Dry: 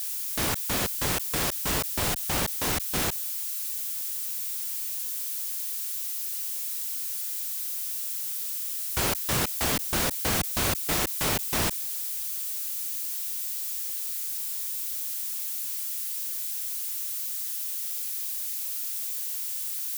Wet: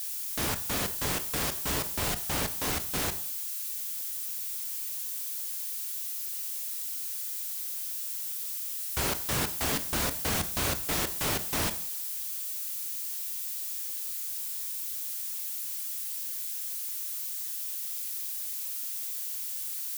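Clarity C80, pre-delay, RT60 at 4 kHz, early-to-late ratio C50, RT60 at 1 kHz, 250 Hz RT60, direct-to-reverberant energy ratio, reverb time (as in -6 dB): 17.0 dB, 4 ms, 0.50 s, 14.5 dB, 0.55 s, 0.60 s, 9.0 dB, 0.60 s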